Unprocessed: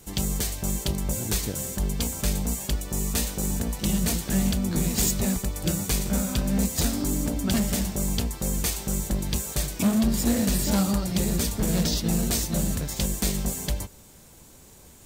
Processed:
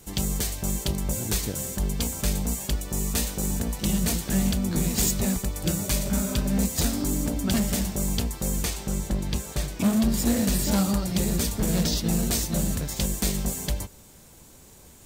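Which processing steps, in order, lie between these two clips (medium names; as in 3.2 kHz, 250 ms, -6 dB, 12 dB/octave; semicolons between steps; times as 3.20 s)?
5.84–6.48 s: spectral replace 350–760 Hz after; 8.64–9.83 s: treble shelf 9.1 kHz -> 5.2 kHz -9 dB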